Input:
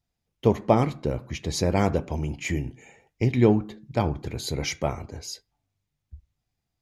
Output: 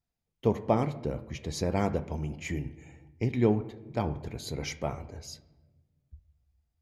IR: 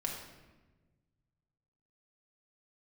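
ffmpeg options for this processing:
-filter_complex "[0:a]asplit=2[a][b];[1:a]atrim=start_sample=2205,lowpass=2.7k[c];[b][c]afir=irnorm=-1:irlink=0,volume=-11.5dB[d];[a][d]amix=inputs=2:normalize=0,volume=-7.5dB"

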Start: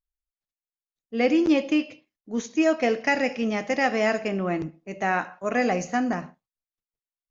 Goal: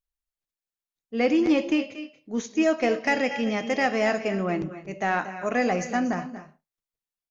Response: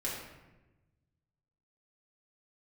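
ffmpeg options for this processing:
-filter_complex "[0:a]asettb=1/sr,asplit=3[a][b][c];[a]atrim=end=3.134[d];[b]atrim=start=3.13:end=3.85,asetpts=PTS-STARTPTS,afade=t=in:d=0.004:c=qsin,afade=t=out:st=0.716:d=0.004:c=qsin,aeval=exprs='val(0)+0.00562*sin(2*PI*3200*n/s)':c=same[e];[c]atrim=start=3.846[f];[d][e]acrossfade=d=0.004:c1=hsin:c2=qsin[g];[g][f]acrossfade=d=0.004:c1=qsin:c2=hsin,aecho=1:1:231|236|262:0.106|0.188|0.119,acontrast=89,volume=-7.5dB"

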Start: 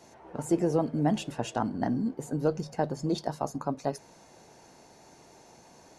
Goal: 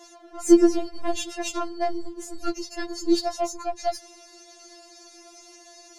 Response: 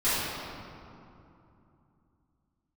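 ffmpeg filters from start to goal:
-af "equalizer=f=5.1k:t=o:w=1.5:g=10,aeval=exprs='0.224*(cos(1*acos(clip(val(0)/0.224,-1,1)))-cos(1*PI/2))+0.0141*(cos(6*acos(clip(val(0)/0.224,-1,1)))-cos(6*PI/2))':c=same,afftfilt=real='re*4*eq(mod(b,16),0)':imag='im*4*eq(mod(b,16),0)':win_size=2048:overlap=0.75,volume=5dB"

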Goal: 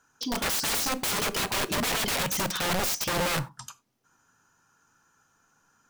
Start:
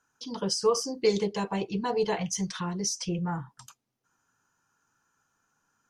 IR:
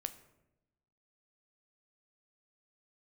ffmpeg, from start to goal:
-filter_complex "[0:a]aeval=exprs='(mod(31.6*val(0)+1,2)-1)/31.6':c=same,asplit=2[a][b];[1:a]atrim=start_sample=2205,afade=t=out:st=0.15:d=0.01,atrim=end_sample=7056[c];[b][c]afir=irnorm=-1:irlink=0,volume=4.5dB[d];[a][d]amix=inputs=2:normalize=0"

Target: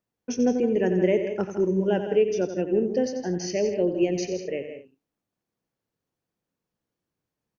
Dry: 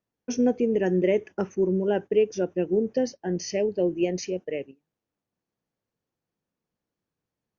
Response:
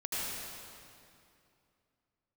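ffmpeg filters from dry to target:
-filter_complex "[0:a]asettb=1/sr,asplit=3[a][b][c];[a]atrim=end=1.604[d];[b]atrim=start=1.6:end=2.08,asetpts=PTS-STARTPTS,afade=t=in:d=0.004:c=qsin,afade=t=out:st=0.476:d=0.004:c=qsin,aemphasis=mode=production:type=50kf[e];[c]atrim=start=2.076[f];[d][e]acrossfade=d=0.004:c1=hsin:c2=qsin[g];[g][f]acrossfade=d=0.004:c1=qsin:c2=hsin,aecho=1:1:90|163|194|232:0.316|0.316|0.15|0.1"

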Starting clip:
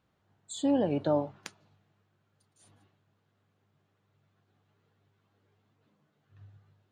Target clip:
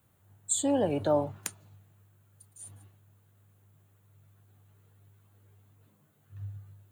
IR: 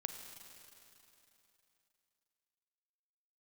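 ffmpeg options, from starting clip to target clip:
-filter_complex "[0:a]equalizer=f=97:t=o:w=0.75:g=11.5,acrossover=split=350|520|2700[a][b][c][d];[a]alimiter=level_in=8dB:limit=-24dB:level=0:latency=1,volume=-8dB[e];[e][b][c][d]amix=inputs=4:normalize=0,aexciter=amount=9:drive=2.5:freq=7.3k,volume=2.5dB"

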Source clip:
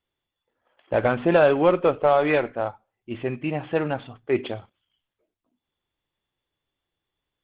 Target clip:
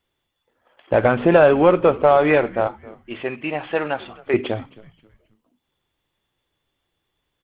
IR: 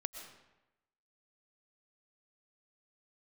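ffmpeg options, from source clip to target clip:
-filter_complex "[0:a]acrossover=split=3300[a][b];[b]acompressor=threshold=-51dB:ratio=4:attack=1:release=60[c];[a][c]amix=inputs=2:normalize=0,asettb=1/sr,asplit=3[d][e][f];[d]atrim=end=2.674[g];[e]atrim=start=2.67:end=4.34,asetpts=PTS-STARTPTS,afade=t=in:d=0.004:c=qsin,afade=t=out:st=1.666:d=0.004:c=qsin,highpass=f=750:p=1[h];[f]atrim=start=4.336[i];[g][h]acrossfade=d=0.004:c1=hsin:c2=qsin[j];[j][i]acrossfade=d=0.004:c1=qsin:c2=hsin,asplit=2[k][l];[l]acompressor=threshold=-26dB:ratio=6,volume=-1dB[m];[k][m]amix=inputs=2:normalize=0,asplit=4[n][o][p][q];[o]adelay=266,afreqshift=-110,volume=-21dB[r];[p]adelay=532,afreqshift=-220,volume=-29.9dB[s];[q]adelay=798,afreqshift=-330,volume=-38.7dB[t];[n][r][s][t]amix=inputs=4:normalize=0,volume=2.5dB"

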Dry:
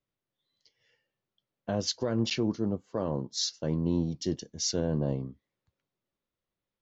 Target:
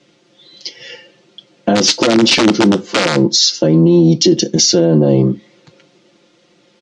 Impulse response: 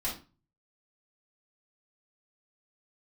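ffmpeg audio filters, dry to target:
-filter_complex "[0:a]aecho=1:1:5.7:0.93,acompressor=threshold=-38dB:ratio=6,asplit=3[a][b][c];[a]afade=t=out:st=1.75:d=0.02[d];[b]aeval=exprs='(mod(44.7*val(0)+1,2)-1)/44.7':c=same,afade=t=in:st=1.75:d=0.02,afade=t=out:st=3.15:d=0.02[e];[c]afade=t=in:st=3.15:d=0.02[f];[d][e][f]amix=inputs=3:normalize=0,acontrast=50,highpass=190,equalizer=f=290:t=q:w=4:g=7,equalizer=f=750:t=q:w=4:g=-3,equalizer=f=1.1k:t=q:w=4:g=-7,equalizer=f=1.7k:t=q:w=4:g=-5,lowpass=f=6.3k:w=0.5412,lowpass=f=6.3k:w=1.3066,asplit=2[g][h];[1:a]atrim=start_sample=2205,asetrate=70560,aresample=44100,highshelf=f=2.9k:g=5.5[i];[h][i]afir=irnorm=-1:irlink=0,volume=-19.5dB[j];[g][j]amix=inputs=2:normalize=0,alimiter=level_in=31dB:limit=-1dB:release=50:level=0:latency=1,volume=-1dB" -ar 24000 -c:a libmp3lame -b:a 80k

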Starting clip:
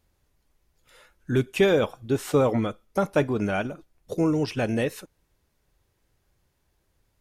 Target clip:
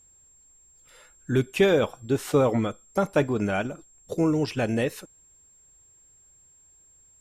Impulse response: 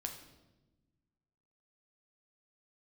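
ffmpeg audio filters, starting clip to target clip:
-af "aeval=exprs='val(0)+0.00178*sin(2*PI*7500*n/s)':c=same"

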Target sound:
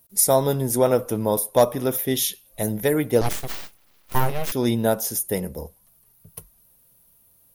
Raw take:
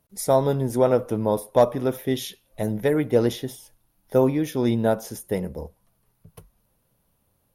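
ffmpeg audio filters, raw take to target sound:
-filter_complex "[0:a]aemphasis=mode=production:type=75kf,asettb=1/sr,asplit=3[a][b][c];[a]atrim=end=3.214[d];[b]atrim=start=3.21:end=4.52,asetpts=PTS-STARTPTS,afade=t=in:d=0.004:c=qsin,afade=t=out:st=1.306:d=0.004:c=qsin,aeval=exprs='abs(val(0))':c=same[e];[c]atrim=start=4.516[f];[d][e]acrossfade=d=0.004:c1=hsin:c2=qsin[g];[g][f]acrossfade=d=0.004:c1=qsin:c2=hsin"

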